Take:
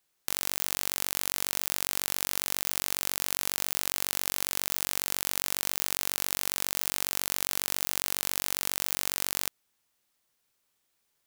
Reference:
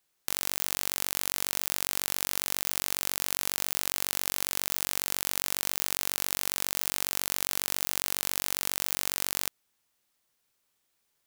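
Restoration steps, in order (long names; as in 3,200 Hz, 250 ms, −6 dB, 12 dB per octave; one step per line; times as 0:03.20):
no processing needed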